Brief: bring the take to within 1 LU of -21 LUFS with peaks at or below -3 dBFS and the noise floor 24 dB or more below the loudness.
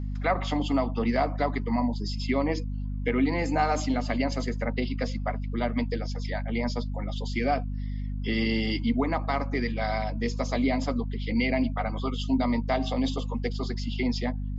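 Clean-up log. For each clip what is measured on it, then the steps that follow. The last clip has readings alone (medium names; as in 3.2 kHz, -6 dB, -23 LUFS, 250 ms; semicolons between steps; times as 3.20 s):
hum 50 Hz; highest harmonic 250 Hz; hum level -29 dBFS; loudness -28.5 LUFS; peak level -12.0 dBFS; loudness target -21.0 LUFS
-> hum notches 50/100/150/200/250 Hz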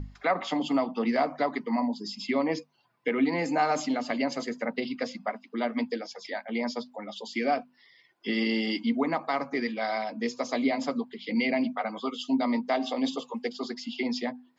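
hum not found; loudness -30.0 LUFS; peak level -13.5 dBFS; loudness target -21.0 LUFS
-> trim +9 dB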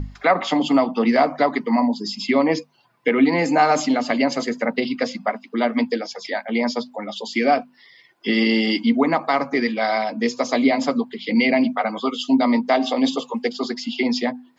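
loudness -21.0 LUFS; peak level -4.5 dBFS; noise floor -56 dBFS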